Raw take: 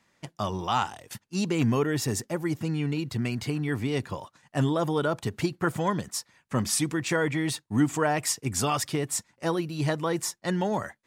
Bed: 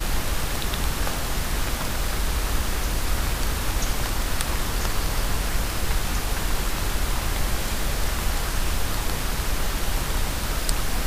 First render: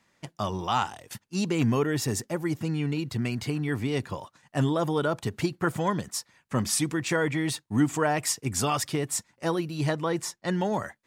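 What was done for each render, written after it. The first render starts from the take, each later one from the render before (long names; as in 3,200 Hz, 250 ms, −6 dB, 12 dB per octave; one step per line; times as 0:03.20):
0:09.91–0:10.51: high-shelf EQ 8,400 Hz −8 dB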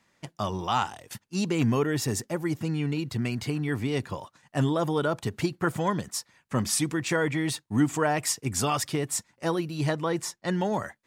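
no processing that can be heard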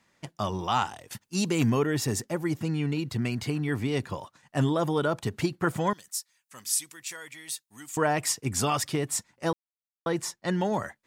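0:01.21–0:01.70: high-shelf EQ 6,000 Hz +9.5 dB
0:05.93–0:07.97: first-order pre-emphasis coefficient 0.97
0:09.53–0:10.06: silence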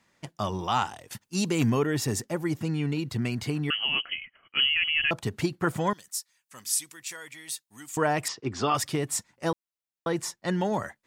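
0:03.70–0:05.11: voice inversion scrambler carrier 3,100 Hz
0:08.28–0:08.75: loudspeaker in its box 120–4,900 Hz, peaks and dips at 170 Hz −8 dB, 370 Hz +6 dB, 1,200 Hz +4 dB, 2,300 Hz −4 dB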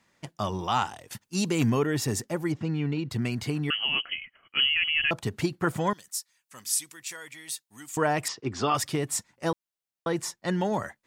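0:02.52–0:03.11: high-frequency loss of the air 130 metres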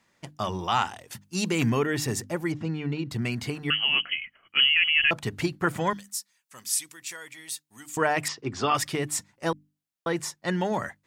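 mains-hum notches 50/100/150/200/250/300 Hz
dynamic equaliser 2,100 Hz, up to +5 dB, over −41 dBFS, Q 1.1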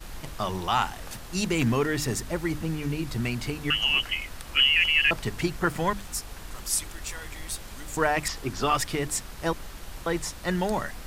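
mix in bed −15.5 dB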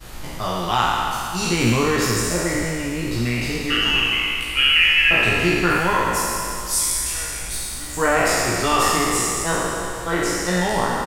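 peak hold with a decay on every bin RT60 2.81 s
double-tracking delay 17 ms −3 dB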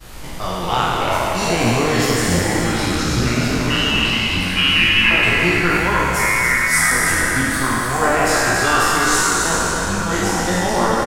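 delay with pitch and tempo change per echo 93 ms, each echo −5 semitones, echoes 2
single-tap delay 284 ms −6.5 dB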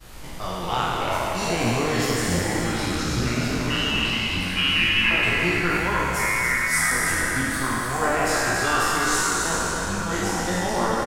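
level −6 dB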